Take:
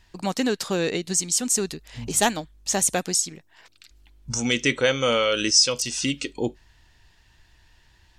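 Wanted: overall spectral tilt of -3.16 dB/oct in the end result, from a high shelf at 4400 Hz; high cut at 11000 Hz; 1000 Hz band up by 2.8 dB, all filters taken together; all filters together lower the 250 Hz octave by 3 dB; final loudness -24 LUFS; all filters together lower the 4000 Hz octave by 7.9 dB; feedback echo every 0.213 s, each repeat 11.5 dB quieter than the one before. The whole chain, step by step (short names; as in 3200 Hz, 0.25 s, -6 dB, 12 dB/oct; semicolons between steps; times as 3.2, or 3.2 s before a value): LPF 11000 Hz; bell 250 Hz -4 dB; bell 1000 Hz +5 dB; bell 4000 Hz -7.5 dB; high shelf 4400 Hz -6.5 dB; feedback echo 0.213 s, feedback 27%, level -11.5 dB; gain +2 dB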